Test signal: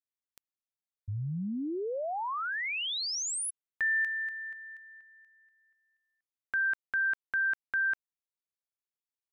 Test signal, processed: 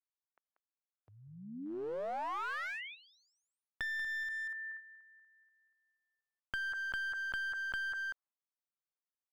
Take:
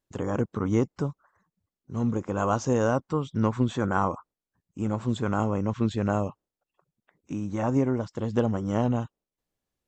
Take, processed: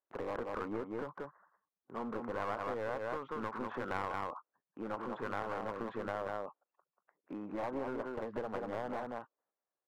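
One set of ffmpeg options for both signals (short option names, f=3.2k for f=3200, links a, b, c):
-af "lowpass=f=1.5k:w=0.5412,lowpass=f=1.5k:w=1.3066,aemphasis=mode=production:type=75fm,aecho=1:1:187:0.473,agate=range=-7dB:threshold=-49dB:ratio=16:release=276:detection=rms,highpass=550,acompressor=threshold=-42dB:ratio=6:attack=73:release=68:knee=6:detection=rms,aeval=exprs='clip(val(0),-1,0.00794)':c=same,volume=4dB"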